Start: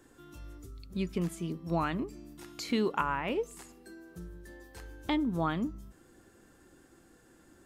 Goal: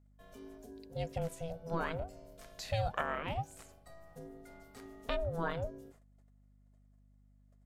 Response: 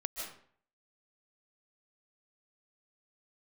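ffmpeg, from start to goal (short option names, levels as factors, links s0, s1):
-af "agate=range=0.0631:threshold=0.00178:ratio=16:detection=peak,aeval=exprs='val(0)*sin(2*PI*330*n/s)':c=same,aeval=exprs='val(0)+0.000891*(sin(2*PI*50*n/s)+sin(2*PI*2*50*n/s)/2+sin(2*PI*3*50*n/s)/3+sin(2*PI*4*50*n/s)/4+sin(2*PI*5*50*n/s)/5)':c=same,volume=0.794"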